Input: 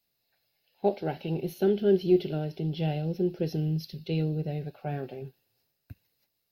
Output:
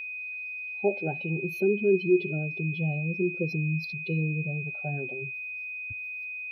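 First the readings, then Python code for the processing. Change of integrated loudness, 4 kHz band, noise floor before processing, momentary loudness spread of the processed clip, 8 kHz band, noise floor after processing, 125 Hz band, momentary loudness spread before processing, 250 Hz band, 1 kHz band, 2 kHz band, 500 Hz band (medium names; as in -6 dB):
0.0 dB, -6.0 dB, -79 dBFS, 9 LU, no reading, -37 dBFS, +0.5 dB, 12 LU, -0.5 dB, -4.0 dB, +18.5 dB, 0.0 dB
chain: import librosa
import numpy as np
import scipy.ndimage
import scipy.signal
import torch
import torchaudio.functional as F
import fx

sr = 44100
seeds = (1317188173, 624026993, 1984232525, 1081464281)

y = fx.spec_expand(x, sr, power=1.7)
y = y + 10.0 ** (-34.0 / 20.0) * np.sin(2.0 * np.pi * 2500.0 * np.arange(len(y)) / sr)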